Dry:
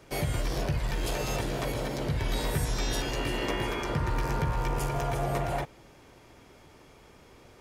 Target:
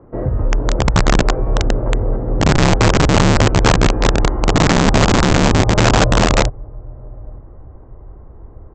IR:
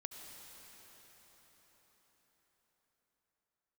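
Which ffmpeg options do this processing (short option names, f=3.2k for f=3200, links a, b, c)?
-filter_complex "[0:a]lowpass=f=1.2k:w=0.5412,lowpass=f=1.2k:w=1.3066,equalizer=f=940:w=2.3:g=-4,asplit=2[a][b];[b]adelay=787,lowpass=f=830:p=1,volume=-22dB,asplit=2[c][d];[d]adelay=787,lowpass=f=830:p=1,volume=0.25[e];[a][c][e]amix=inputs=3:normalize=0,asubboost=boost=6.5:cutoff=94,acontrast=40,asetrate=38367,aresample=44100,aresample=16000,aeval=exprs='(mod(4.22*val(0)+1,2)-1)/4.22':c=same,aresample=44100,volume=5.5dB"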